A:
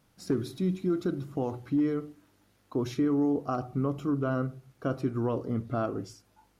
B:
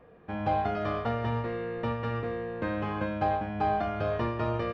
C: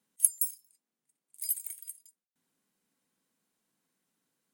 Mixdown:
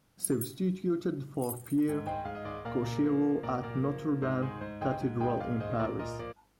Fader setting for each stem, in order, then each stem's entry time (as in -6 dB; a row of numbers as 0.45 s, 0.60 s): -2.0 dB, -8.5 dB, -10.0 dB; 0.00 s, 1.60 s, 0.00 s